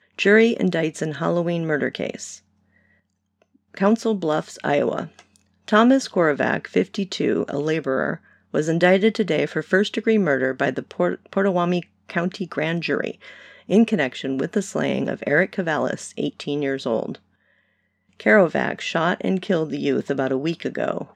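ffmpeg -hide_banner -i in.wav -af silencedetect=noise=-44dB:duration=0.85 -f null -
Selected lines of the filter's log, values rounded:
silence_start: 2.38
silence_end: 3.42 | silence_duration: 1.04
silence_start: 17.17
silence_end: 18.20 | silence_duration: 1.03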